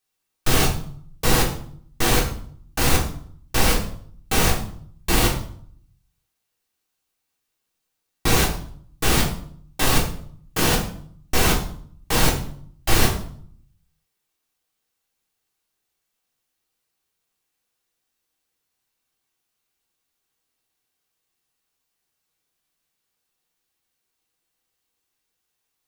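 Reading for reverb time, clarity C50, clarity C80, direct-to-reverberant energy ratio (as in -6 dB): 0.60 s, 7.5 dB, 12.0 dB, -2.5 dB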